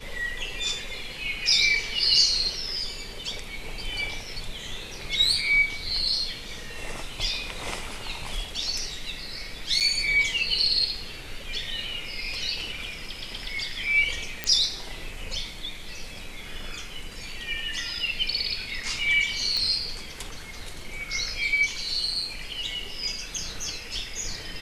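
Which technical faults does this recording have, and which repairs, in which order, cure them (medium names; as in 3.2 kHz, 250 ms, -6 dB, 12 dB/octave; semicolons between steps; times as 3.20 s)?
9.80–9.81 s: dropout 7.6 ms
14.44 s: pop -10 dBFS
19.57 s: pop -14 dBFS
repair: de-click; interpolate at 9.80 s, 7.6 ms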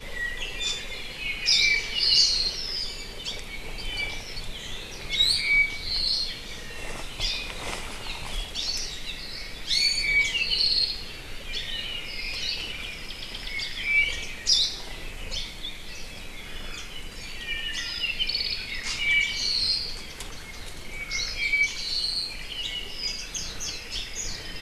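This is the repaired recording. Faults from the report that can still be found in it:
nothing left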